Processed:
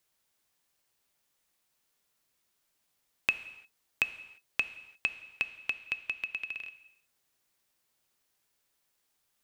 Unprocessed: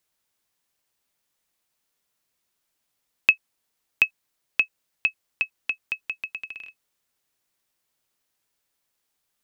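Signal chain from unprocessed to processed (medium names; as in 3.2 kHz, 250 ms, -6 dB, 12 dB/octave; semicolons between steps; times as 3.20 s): compression 2:1, threshold -33 dBFS, peak gain reduction 11.5 dB; gated-style reverb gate 370 ms falling, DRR 11.5 dB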